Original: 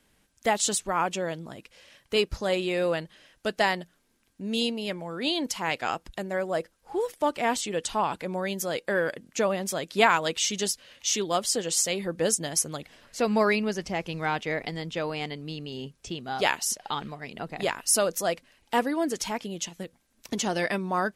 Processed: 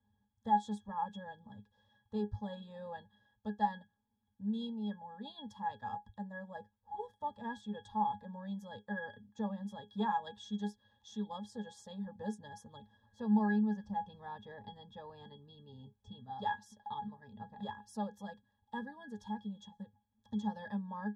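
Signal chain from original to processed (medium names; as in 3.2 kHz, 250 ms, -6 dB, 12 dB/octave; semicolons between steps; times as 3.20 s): 18.24–20.43 s: dynamic bell 770 Hz, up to -4 dB, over -37 dBFS, Q 0.89; static phaser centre 920 Hz, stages 4; pitch-class resonator G#, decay 0.14 s; trim +4.5 dB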